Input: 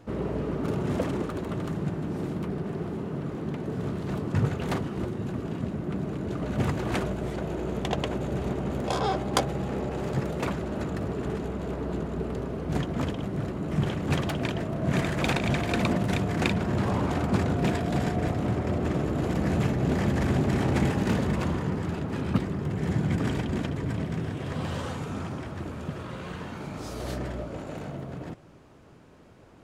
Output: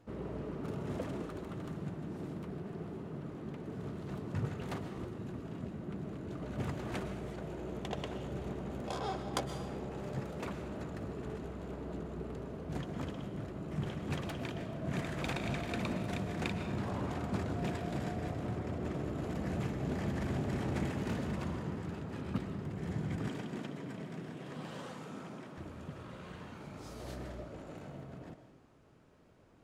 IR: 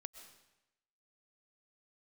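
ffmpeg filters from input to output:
-filter_complex "[0:a]asettb=1/sr,asplit=3[s0][s1][s2];[s0]atrim=end=23.284[s3];[s1]atrim=start=23.28:end=25.58,asetpts=PTS-STARTPTS,afade=t=in:d=0.004:c=qsin,afade=t=out:st=2.296:d=0.004:c=qsin,highpass=f=150:w=0.5412,highpass=f=150:w=1.3066[s4];[s2]atrim=start=25.576[s5];[s3][s4]acrossfade=d=0.004:c1=hsin:c2=qsin[s6];[s6][s5]acrossfade=d=0.004:c1=qsin:c2=hsin[s7];[1:a]atrim=start_sample=2205[s8];[s7][s8]afir=irnorm=-1:irlink=0,volume=0.531"

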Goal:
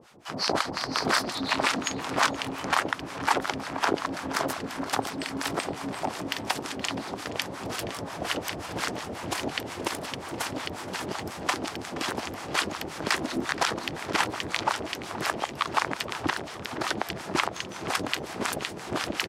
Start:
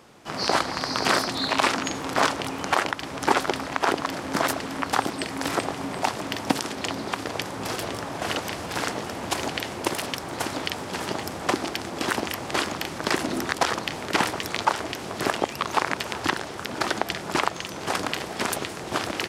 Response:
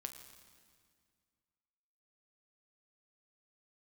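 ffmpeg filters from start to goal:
-filter_complex "[0:a]acrossover=split=760[s0][s1];[s0]aeval=exprs='val(0)*(1-1/2+1/2*cos(2*PI*5.6*n/s))':c=same[s2];[s1]aeval=exprs='val(0)*(1-1/2-1/2*cos(2*PI*5.6*n/s))':c=same[s3];[s2][s3]amix=inputs=2:normalize=0,asplit=2[s4][s5];[s5]adelay=473,lowpass=f=3100:p=1,volume=0.2,asplit=2[s6][s7];[s7]adelay=473,lowpass=f=3100:p=1,volume=0.54,asplit=2[s8][s9];[s9]adelay=473,lowpass=f=3100:p=1,volume=0.54,asplit=2[s10][s11];[s11]adelay=473,lowpass=f=3100:p=1,volume=0.54,asplit=2[s12][s13];[s13]adelay=473,lowpass=f=3100:p=1,volume=0.54[s14];[s4][s6][s8][s10][s12][s14]amix=inputs=6:normalize=0,volume=1.19"

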